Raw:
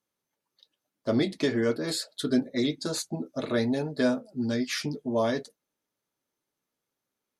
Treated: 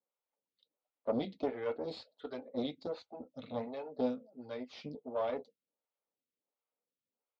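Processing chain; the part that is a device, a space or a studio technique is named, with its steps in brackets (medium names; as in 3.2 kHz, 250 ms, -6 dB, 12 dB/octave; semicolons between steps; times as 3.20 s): vibe pedal into a guitar amplifier (lamp-driven phase shifter 1.4 Hz; valve stage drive 22 dB, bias 0.75; cabinet simulation 94–3600 Hz, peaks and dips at 140 Hz -9 dB, 350 Hz -6 dB, 500 Hz +7 dB, 770 Hz +4 dB, 1.7 kHz -10 dB); 3.22–3.67 s: peaking EQ 380 Hz -14.5 dB 0.51 oct; trim -3.5 dB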